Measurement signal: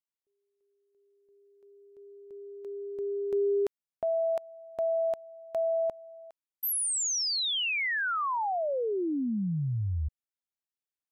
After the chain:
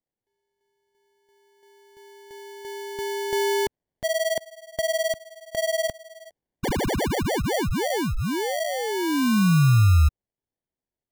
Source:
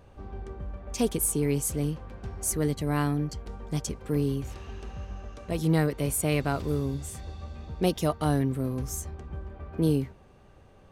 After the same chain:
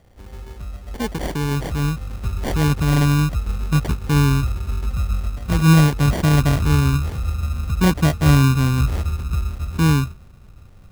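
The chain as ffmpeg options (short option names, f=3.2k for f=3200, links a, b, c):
-af "asubboost=boost=4.5:cutoff=200,dynaudnorm=f=330:g=11:m=5.5dB,acrusher=samples=34:mix=1:aa=0.000001"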